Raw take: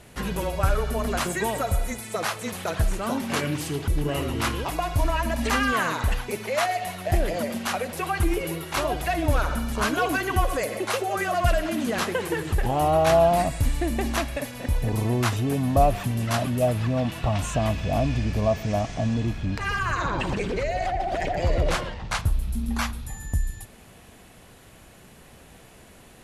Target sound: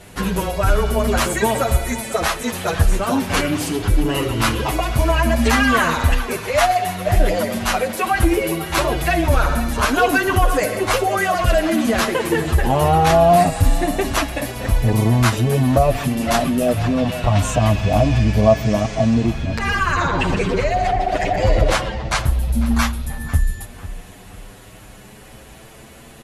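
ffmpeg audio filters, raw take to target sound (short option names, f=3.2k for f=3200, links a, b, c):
-filter_complex "[0:a]asplit=2[a][b];[b]adelay=497,lowpass=f=2.9k:p=1,volume=-15dB,asplit=2[c][d];[d]adelay=497,lowpass=f=2.9k:p=1,volume=0.4,asplit=2[e][f];[f]adelay=497,lowpass=f=2.9k:p=1,volume=0.4,asplit=2[g][h];[h]adelay=497,lowpass=f=2.9k:p=1,volume=0.4[i];[a][c][e][g][i]amix=inputs=5:normalize=0,alimiter=level_in=11.5dB:limit=-1dB:release=50:level=0:latency=1,asplit=2[j][k];[k]adelay=7.9,afreqshift=0.29[l];[j][l]amix=inputs=2:normalize=1,volume=-1dB"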